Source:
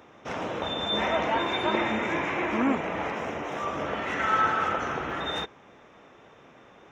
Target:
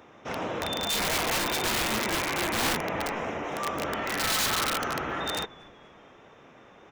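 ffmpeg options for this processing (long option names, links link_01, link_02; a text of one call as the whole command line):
ffmpeg -i in.wav -filter_complex "[0:a]asplit=4[link_01][link_02][link_03][link_04];[link_02]adelay=239,afreqshift=-140,volume=-21dB[link_05];[link_03]adelay=478,afreqshift=-280,volume=-28.3dB[link_06];[link_04]adelay=717,afreqshift=-420,volume=-35.7dB[link_07];[link_01][link_05][link_06][link_07]amix=inputs=4:normalize=0,aeval=exprs='(mod(11.9*val(0)+1,2)-1)/11.9':channel_layout=same" out.wav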